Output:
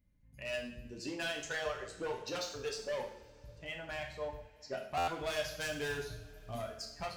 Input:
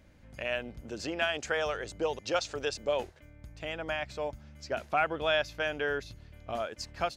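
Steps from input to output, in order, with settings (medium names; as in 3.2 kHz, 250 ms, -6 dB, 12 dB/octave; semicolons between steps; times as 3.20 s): expander on every frequency bin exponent 1.5; hard clipper -32 dBFS, distortion -7 dB; 5.44–6.62 s: tone controls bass +7 dB, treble +12 dB; reverberation, pre-delay 3 ms, DRR -0.5 dB; buffer glitch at 4.97 s, samples 512, times 8; trim -3.5 dB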